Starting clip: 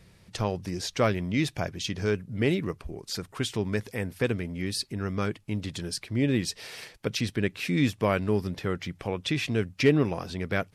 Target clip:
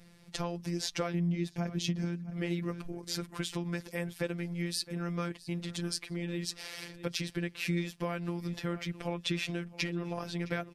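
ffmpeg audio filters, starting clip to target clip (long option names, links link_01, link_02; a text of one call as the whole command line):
ffmpeg -i in.wav -filter_complex "[0:a]asettb=1/sr,asplit=3[link_01][link_02][link_03];[link_01]atrim=end=1.144[link_04];[link_02]atrim=start=1.14:end=2.3,asetpts=PTS-STARTPTS,afade=type=in:duration=0.004:curve=qsin,afade=type=out:start_time=1.156:duration=0.004:curve=qsin,equalizer=frequency=210:width=1:gain=13[link_05];[link_03]atrim=start=2.296[link_06];[link_04][link_05]acrossfade=duration=0.004:curve1=hsin:curve2=qsin[link_07];[link_07][link_06]acrossfade=duration=0.004:curve1=qsin:curve2=hsin,aecho=1:1:662|1324:0.0891|0.0232,acompressor=threshold=-27dB:ratio=16,afftfilt=real='hypot(re,im)*cos(PI*b)':imag='0':win_size=1024:overlap=0.75,volume=1.5dB" out.wav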